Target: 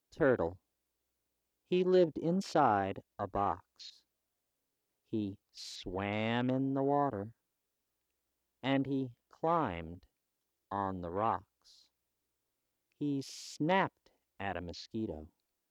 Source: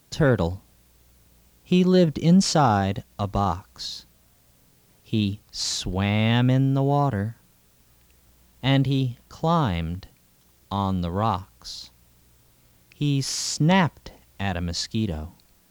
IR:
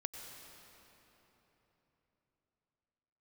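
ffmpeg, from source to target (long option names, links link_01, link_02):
-filter_complex "[0:a]lowshelf=frequency=230:width_type=q:width=1.5:gain=-9,afwtdn=0.02,acrossover=split=2800[link_01][link_02];[link_02]acompressor=threshold=-40dB:ratio=4:attack=1:release=60[link_03];[link_01][link_03]amix=inputs=2:normalize=0,volume=-8.5dB"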